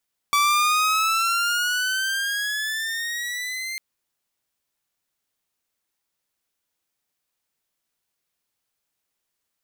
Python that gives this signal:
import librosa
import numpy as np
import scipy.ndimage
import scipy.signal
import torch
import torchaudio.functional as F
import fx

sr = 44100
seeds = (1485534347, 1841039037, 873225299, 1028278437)

y = fx.riser_tone(sr, length_s=3.45, level_db=-13.5, wave='saw', hz=1150.0, rise_st=10.5, swell_db=-12)